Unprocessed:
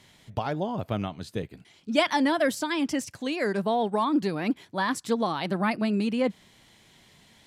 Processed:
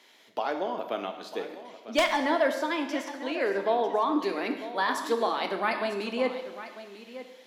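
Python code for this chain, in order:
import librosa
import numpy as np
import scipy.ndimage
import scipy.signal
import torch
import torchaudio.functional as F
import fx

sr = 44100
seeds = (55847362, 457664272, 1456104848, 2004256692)

y = scipy.signal.sosfilt(scipy.signal.butter(4, 320.0, 'highpass', fs=sr, output='sos'), x)
y = fx.peak_eq(y, sr, hz=8500.0, db=-10.0, octaves=0.43)
y = y + 10.0 ** (-14.0 / 20.0) * np.pad(y, (int(948 * sr / 1000.0), 0))[:len(y)]
y = 10.0 ** (-14.0 / 20.0) * (np.abs((y / 10.0 ** (-14.0 / 20.0) + 3.0) % 4.0 - 2.0) - 1.0)
y = fx.high_shelf(y, sr, hz=3500.0, db=-8.5, at=(2.12, 4.19))
y = fx.rev_plate(y, sr, seeds[0], rt60_s=1.1, hf_ratio=0.9, predelay_ms=0, drr_db=5.0)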